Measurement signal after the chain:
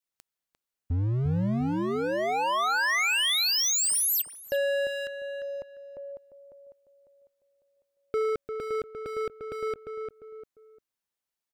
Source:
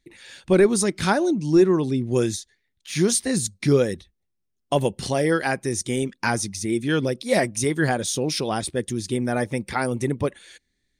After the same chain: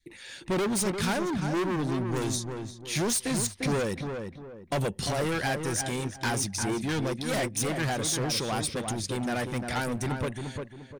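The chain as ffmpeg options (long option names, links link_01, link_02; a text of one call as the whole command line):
ffmpeg -i in.wav -filter_complex "[0:a]asoftclip=type=hard:threshold=-24.5dB,asplit=2[link_01][link_02];[link_02]adelay=349,lowpass=frequency=1700:poles=1,volume=-5dB,asplit=2[link_03][link_04];[link_04]adelay=349,lowpass=frequency=1700:poles=1,volume=0.26,asplit=2[link_05][link_06];[link_06]adelay=349,lowpass=frequency=1700:poles=1,volume=0.26[link_07];[link_01][link_03][link_05][link_07]amix=inputs=4:normalize=0,adynamicequalizer=threshold=0.0112:dfrequency=370:dqfactor=0.7:tfrequency=370:tqfactor=0.7:attack=5:release=100:ratio=0.375:range=2.5:mode=cutabove:tftype=bell" out.wav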